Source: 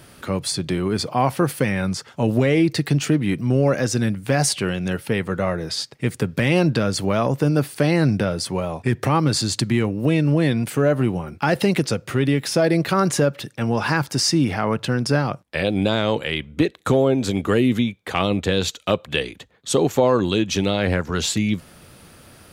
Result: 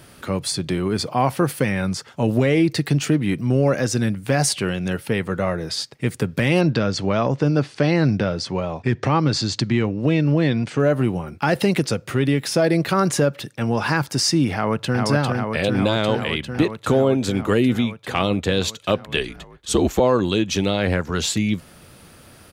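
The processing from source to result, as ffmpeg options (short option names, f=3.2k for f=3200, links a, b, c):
-filter_complex "[0:a]asettb=1/sr,asplit=3[a][b][c];[a]atrim=end=6.614[d];[b]atrim=start=6.61:end=10.8,asetpts=PTS-STARTPTS,afade=t=in:d=0.004:c=qsin,afade=t=out:st=4.186:d=0.004:c=qsin,lowpass=f=6.4k:w=0.5412,lowpass=f=6.4k:w=1.3066[e];[c]atrim=start=10.796[f];[d][e]acrossfade=d=0.004:c1=hsin:c2=qsin[g];[g][f]acrossfade=d=0.004:c1=qsin:c2=hsin,asplit=2[h][i];[i]afade=t=in:st=14.54:d=0.01,afade=t=out:st=15.04:d=0.01,aecho=0:1:400|800|1200|1600|2000|2400|2800|3200|3600|4000|4400|4800:0.707946|0.566357|0.453085|0.362468|0.289975|0.23198|0.185584|0.148467|0.118774|0.0950189|0.0760151|0.0608121[j];[h][j]amix=inputs=2:normalize=0,asettb=1/sr,asplit=3[k][l][m];[k]atrim=end=19.174[n];[l]atrim=start=19.17:end=20,asetpts=PTS-STARTPTS,afade=t=in:d=0.004:c=qsin,afade=t=out:st=0.826:d=0.004:c=qsin,afreqshift=-62[o];[m]atrim=start=19.996[p];[n][o]acrossfade=d=0.004:c1=hsin:c2=qsin[q];[q][p]acrossfade=d=0.004:c1=qsin:c2=hsin"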